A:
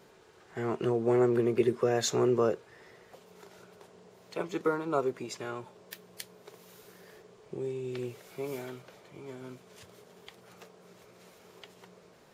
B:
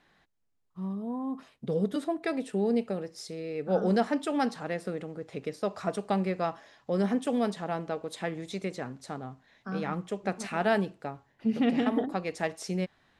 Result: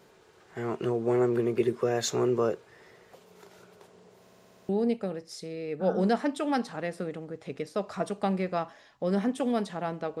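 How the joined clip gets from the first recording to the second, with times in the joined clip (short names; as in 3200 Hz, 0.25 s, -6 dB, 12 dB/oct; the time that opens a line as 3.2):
A
4.21 stutter in place 0.06 s, 8 plays
4.69 switch to B from 2.56 s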